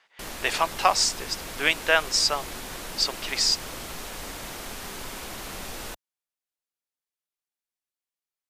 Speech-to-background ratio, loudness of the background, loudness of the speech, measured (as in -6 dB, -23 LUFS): 12.5 dB, -36.5 LUFS, -24.0 LUFS